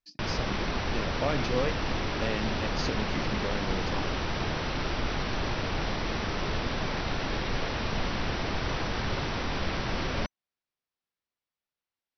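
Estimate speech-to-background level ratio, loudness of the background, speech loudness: -4.0 dB, -31.5 LUFS, -35.5 LUFS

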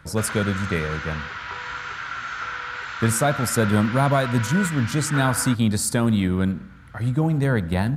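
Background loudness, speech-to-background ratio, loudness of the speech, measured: -30.5 LUFS, 8.0 dB, -22.5 LUFS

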